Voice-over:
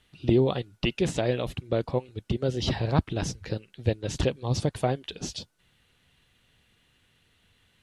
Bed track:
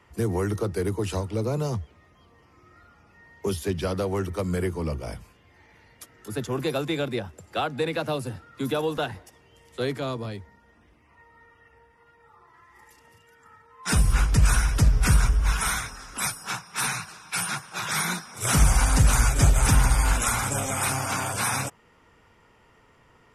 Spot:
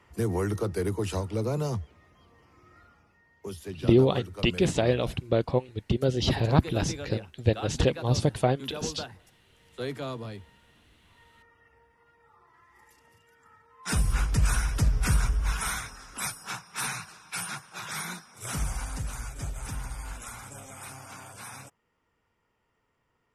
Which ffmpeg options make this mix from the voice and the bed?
ffmpeg -i stem1.wav -i stem2.wav -filter_complex "[0:a]adelay=3600,volume=2dB[link_01];[1:a]volume=4dB,afade=type=out:start_time=2.8:duration=0.42:silence=0.354813,afade=type=in:start_time=9.41:duration=0.58:silence=0.501187,afade=type=out:start_time=17.03:duration=2.1:silence=0.251189[link_02];[link_01][link_02]amix=inputs=2:normalize=0" out.wav

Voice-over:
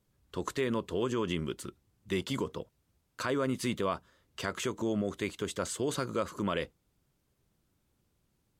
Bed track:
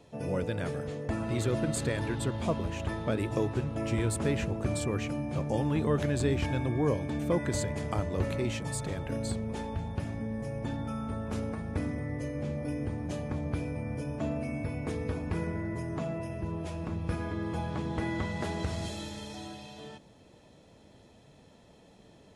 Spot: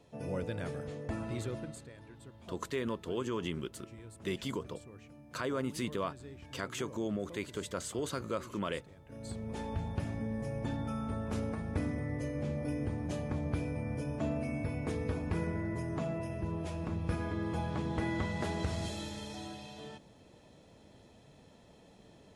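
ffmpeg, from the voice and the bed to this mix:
ffmpeg -i stem1.wav -i stem2.wav -filter_complex "[0:a]adelay=2150,volume=-4dB[link_01];[1:a]volume=14.5dB,afade=type=out:start_time=1.19:duration=0.67:silence=0.158489,afade=type=in:start_time=9.06:duration=0.68:silence=0.105925[link_02];[link_01][link_02]amix=inputs=2:normalize=0" out.wav

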